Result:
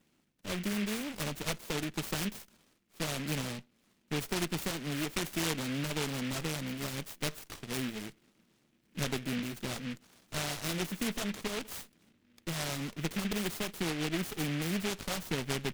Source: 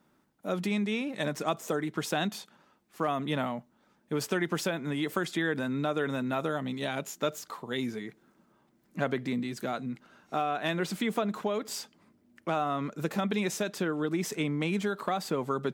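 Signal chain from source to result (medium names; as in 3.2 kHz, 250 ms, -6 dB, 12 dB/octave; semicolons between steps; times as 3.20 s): comb filter that takes the minimum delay 0.56 ms; delay time shaken by noise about 2.2 kHz, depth 0.21 ms; trim -2.5 dB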